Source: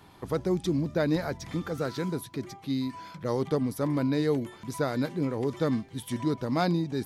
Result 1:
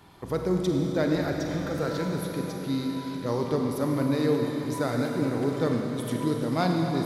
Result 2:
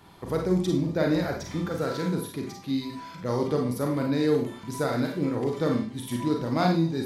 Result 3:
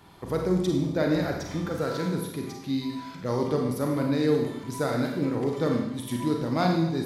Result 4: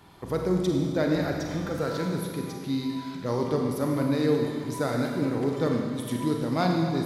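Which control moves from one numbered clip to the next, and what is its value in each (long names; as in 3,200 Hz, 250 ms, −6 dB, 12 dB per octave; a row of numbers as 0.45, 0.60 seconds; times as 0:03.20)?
four-comb reverb, RT60: 4.5, 0.38, 0.85, 2 seconds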